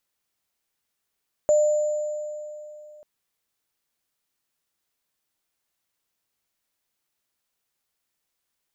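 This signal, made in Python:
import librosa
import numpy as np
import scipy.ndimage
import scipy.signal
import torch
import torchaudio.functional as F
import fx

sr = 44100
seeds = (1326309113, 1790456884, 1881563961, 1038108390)

y = fx.additive_free(sr, length_s=1.54, hz=602.0, level_db=-14, upper_db=(-20.0,), decay_s=2.96, upper_decays_s=(2.27,), upper_hz=(7080.0,))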